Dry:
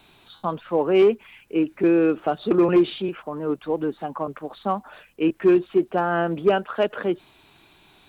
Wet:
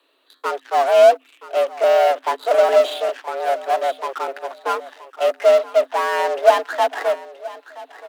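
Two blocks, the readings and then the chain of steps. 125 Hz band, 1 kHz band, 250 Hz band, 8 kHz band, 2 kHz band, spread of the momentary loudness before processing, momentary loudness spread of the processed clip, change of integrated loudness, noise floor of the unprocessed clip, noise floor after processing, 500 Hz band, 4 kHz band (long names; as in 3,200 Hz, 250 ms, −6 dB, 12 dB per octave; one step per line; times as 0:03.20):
below −40 dB, +9.0 dB, −22.0 dB, can't be measured, +6.0 dB, 12 LU, 13 LU, +4.0 dB, −56 dBFS, −57 dBFS, +5.5 dB, +7.5 dB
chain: stylus tracing distortion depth 0.052 ms
dynamic equaliser 430 Hz, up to +6 dB, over −32 dBFS, Q 4.1
in parallel at −5.5 dB: fuzz pedal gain 33 dB, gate −41 dBFS
on the sum: frequency shifter +260 Hz
repeating echo 975 ms, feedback 25%, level −13 dB
expander for the loud parts 1.5 to 1, over −23 dBFS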